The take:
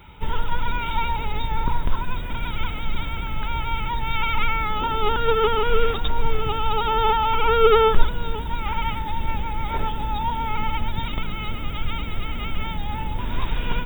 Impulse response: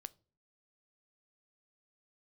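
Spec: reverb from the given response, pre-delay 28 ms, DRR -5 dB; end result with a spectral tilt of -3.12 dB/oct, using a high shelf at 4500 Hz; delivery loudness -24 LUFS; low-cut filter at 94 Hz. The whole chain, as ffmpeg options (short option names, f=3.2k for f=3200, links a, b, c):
-filter_complex "[0:a]highpass=94,highshelf=f=4.5k:g=-7,asplit=2[a][b];[1:a]atrim=start_sample=2205,adelay=28[c];[b][c]afir=irnorm=-1:irlink=0,volume=10.5dB[d];[a][d]amix=inputs=2:normalize=0,volume=-4.5dB"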